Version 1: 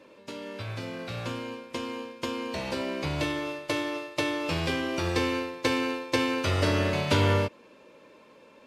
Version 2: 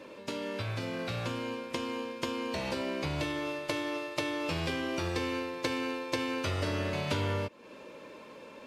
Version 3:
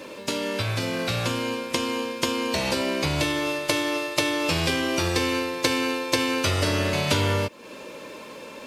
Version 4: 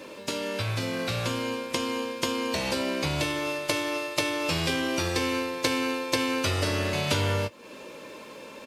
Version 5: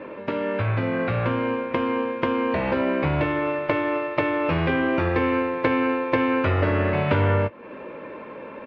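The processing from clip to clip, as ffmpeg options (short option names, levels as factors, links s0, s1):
-af "acompressor=threshold=0.0112:ratio=3,volume=1.88"
-af "highshelf=f=4500:g=10.5,volume=2.51"
-filter_complex "[0:a]asplit=2[s0][s1];[s1]adelay=19,volume=0.211[s2];[s0][s2]amix=inputs=2:normalize=0,volume=0.668"
-af "lowpass=f=2100:w=0.5412,lowpass=f=2100:w=1.3066,volume=2.11"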